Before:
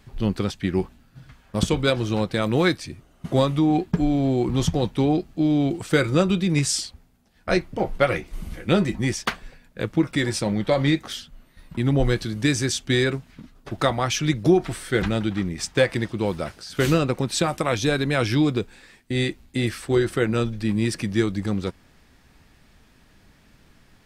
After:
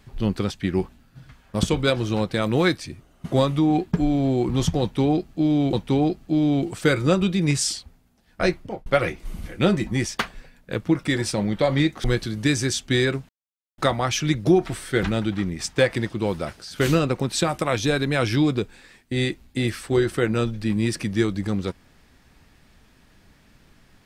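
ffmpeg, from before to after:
ffmpeg -i in.wav -filter_complex "[0:a]asplit=6[link_01][link_02][link_03][link_04][link_05][link_06];[link_01]atrim=end=5.732[link_07];[link_02]atrim=start=4.808:end=7.94,asetpts=PTS-STARTPTS,afade=type=out:start_time=2.812:duration=0.32[link_08];[link_03]atrim=start=7.94:end=11.122,asetpts=PTS-STARTPTS,afade=type=in:duration=0.004:curve=hsin[link_09];[link_04]atrim=start=12.028:end=13.28,asetpts=PTS-STARTPTS,afade=type=out:start_time=1.248:duration=0.004:curve=hsin[link_10];[link_05]atrim=start=13.28:end=13.77,asetpts=PTS-STARTPTS,volume=0[link_11];[link_06]atrim=start=13.77,asetpts=PTS-STARTPTS,afade=type=in:duration=0.004:curve=hsin[link_12];[link_08][link_09]concat=n=2:v=0:a=1[link_13];[link_07][link_13]acrossfade=duration=0.004:curve1=hsin:curve2=hsin[link_14];[link_10][link_11][link_12]concat=n=3:v=0:a=1[link_15];[link_14][link_15]acrossfade=duration=0.004:curve1=hsin:curve2=hsin" out.wav

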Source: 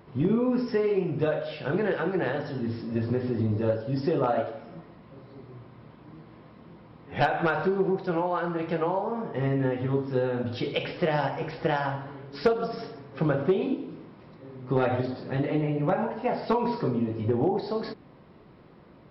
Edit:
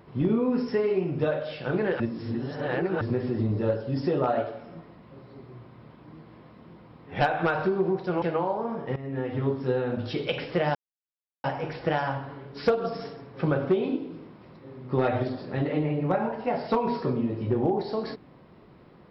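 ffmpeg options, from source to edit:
ffmpeg -i in.wav -filter_complex "[0:a]asplit=6[link_01][link_02][link_03][link_04][link_05][link_06];[link_01]atrim=end=2.002[link_07];[link_02]atrim=start=1.998:end=3.012,asetpts=PTS-STARTPTS,areverse[link_08];[link_03]atrim=start=3.008:end=8.222[link_09];[link_04]atrim=start=8.688:end=9.43,asetpts=PTS-STARTPTS,afade=type=out:start_time=0.738:duration=0.004:curve=hsin:silence=0.125893[link_10];[link_05]atrim=start=9.43:end=11.22,asetpts=PTS-STARTPTS,afade=type=in:duration=0.42:silence=0.125893,afade=type=out:start_time=1.786:duration=0.004:curve=hsin,apad=pad_dur=0.69[link_11];[link_06]atrim=start=11.22,asetpts=PTS-STARTPTS,afade=type=in:duration=0.004:curve=hsin[link_12];[link_07][link_08]acrossfade=duration=0.004:curve1=hsin:curve2=hsin[link_13];[link_13][link_09]acrossfade=duration=0.004:curve1=hsin:curve2=hsin[link_14];[link_10][link_11][link_12]concat=n=3:v=0:a=1[link_15];[link_14][link_15]acrossfade=duration=0.004:curve1=hsin:curve2=hsin" out.wav

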